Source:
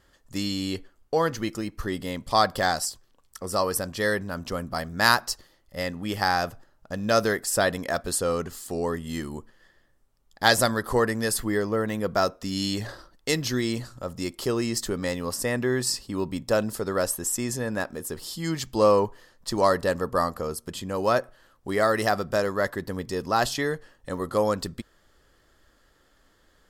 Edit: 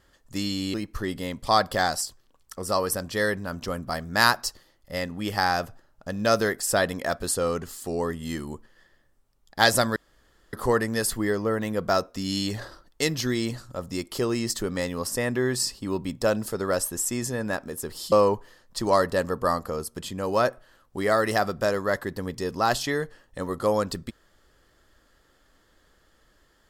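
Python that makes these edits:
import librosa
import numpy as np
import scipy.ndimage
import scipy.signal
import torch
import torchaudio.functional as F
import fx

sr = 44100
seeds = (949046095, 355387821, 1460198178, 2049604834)

y = fx.edit(x, sr, fx.cut(start_s=0.74, length_s=0.84),
    fx.insert_room_tone(at_s=10.8, length_s=0.57),
    fx.cut(start_s=18.39, length_s=0.44), tone=tone)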